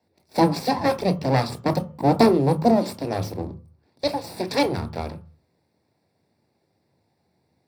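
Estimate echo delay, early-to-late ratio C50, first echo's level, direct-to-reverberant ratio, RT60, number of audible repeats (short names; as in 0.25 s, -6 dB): none, 17.5 dB, none, 9.5 dB, 0.40 s, none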